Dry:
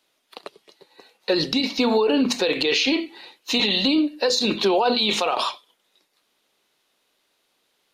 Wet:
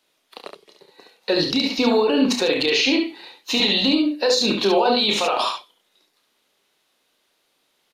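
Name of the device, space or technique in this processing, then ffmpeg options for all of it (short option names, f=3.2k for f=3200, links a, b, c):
slapback doubling: -filter_complex "[0:a]asplit=3[a][b][c];[b]adelay=30,volume=-8dB[d];[c]adelay=70,volume=-5dB[e];[a][d][e]amix=inputs=3:normalize=0"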